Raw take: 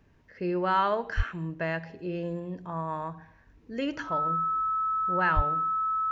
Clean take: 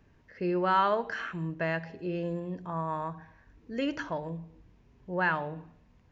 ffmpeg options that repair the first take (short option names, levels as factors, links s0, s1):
-filter_complex "[0:a]bandreject=f=1300:w=30,asplit=3[s0][s1][s2];[s0]afade=t=out:st=1.16:d=0.02[s3];[s1]highpass=f=140:w=0.5412,highpass=f=140:w=1.3066,afade=t=in:st=1.16:d=0.02,afade=t=out:st=1.28:d=0.02[s4];[s2]afade=t=in:st=1.28:d=0.02[s5];[s3][s4][s5]amix=inputs=3:normalize=0,asplit=3[s6][s7][s8];[s6]afade=t=out:st=5.35:d=0.02[s9];[s7]highpass=f=140:w=0.5412,highpass=f=140:w=1.3066,afade=t=in:st=5.35:d=0.02,afade=t=out:st=5.47:d=0.02[s10];[s8]afade=t=in:st=5.47:d=0.02[s11];[s9][s10][s11]amix=inputs=3:normalize=0"